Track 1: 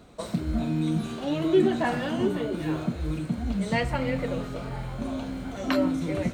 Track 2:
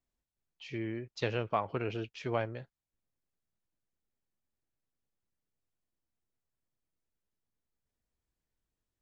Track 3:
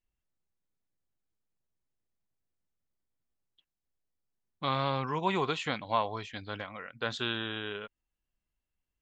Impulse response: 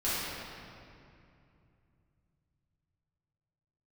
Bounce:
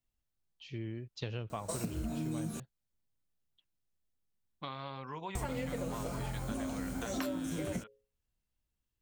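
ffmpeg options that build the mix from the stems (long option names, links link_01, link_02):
-filter_complex "[0:a]equalizer=frequency=9600:width=0.33:gain=-5,aexciter=amount=5.6:drive=6.9:freq=5300,adelay=1500,volume=-2.5dB,asplit=3[link_01][link_02][link_03];[link_01]atrim=end=2.6,asetpts=PTS-STARTPTS,afade=type=out:start_time=2.596:duration=0.004:curve=hsin[link_04];[link_02]atrim=start=2.6:end=5.35,asetpts=PTS-STARTPTS,volume=0[link_05];[link_03]atrim=start=5.35,asetpts=PTS-STARTPTS,afade=type=in:duration=0.004:curve=hsin[link_06];[link_04][link_05][link_06]concat=n=3:v=0:a=1[link_07];[1:a]bass=frequency=250:gain=10,treble=frequency=4000:gain=-11,aexciter=amount=3.8:drive=6.1:freq=3000,volume=-8dB[link_08];[2:a]bandreject=frequency=60:width_type=h:width=6,bandreject=frequency=120:width_type=h:width=6,bandreject=frequency=180:width_type=h:width=6,bandreject=frequency=240:width_type=h:width=6,bandreject=frequency=300:width_type=h:width=6,bandreject=frequency=360:width_type=h:width=6,bandreject=frequency=420:width_type=h:width=6,bandreject=frequency=480:width_type=h:width=6,bandreject=frequency=540:width_type=h:width=6,acompressor=threshold=-36dB:ratio=4,volume=-3.5dB[link_09];[link_07][link_08][link_09]amix=inputs=3:normalize=0,acompressor=threshold=-33dB:ratio=10"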